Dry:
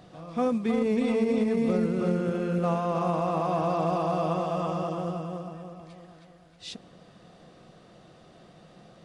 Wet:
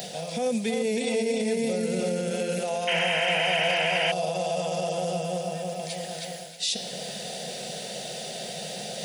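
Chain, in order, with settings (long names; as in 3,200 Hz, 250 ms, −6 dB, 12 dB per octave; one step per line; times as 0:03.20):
high-pass filter 72 Hz
RIAA equalisation recording
hum removal 173.3 Hz, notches 36
in parallel at +3 dB: downward compressor, threshold −39 dBFS, peak gain reduction 13.5 dB
on the sum: brickwall limiter −23 dBFS, peak gain reduction 8.5 dB
reversed playback
upward compression, threshold −31 dBFS
reversed playback
sound drawn into the spectrogram noise, 0:02.87–0:04.12, 880–3,200 Hz −29 dBFS
phaser with its sweep stopped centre 310 Hz, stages 6
level +6.5 dB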